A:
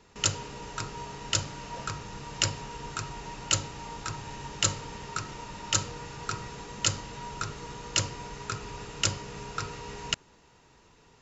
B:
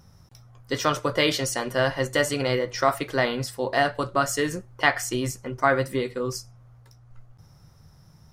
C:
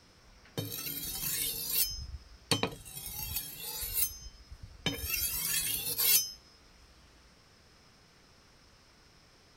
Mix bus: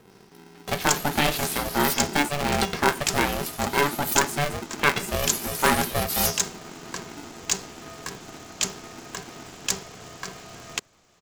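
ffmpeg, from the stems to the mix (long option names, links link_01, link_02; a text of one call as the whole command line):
ffmpeg -i stem1.wav -i stem2.wav -i stem3.wav -filter_complex "[0:a]highshelf=frequency=6400:gain=11,adelay=650,volume=-3dB[link_01];[1:a]equalizer=frequency=5900:width=2.2:gain=-14.5,volume=0dB[link_02];[2:a]asubboost=boost=9:cutoff=98,adelay=100,volume=0.5dB[link_03];[link_01][link_02][link_03]amix=inputs=3:normalize=0,acrossover=split=130|3000[link_04][link_05][link_06];[link_04]acompressor=threshold=-35dB:ratio=6[link_07];[link_07][link_05][link_06]amix=inputs=3:normalize=0,aeval=exprs='val(0)*sgn(sin(2*PI*290*n/s))':channel_layout=same" out.wav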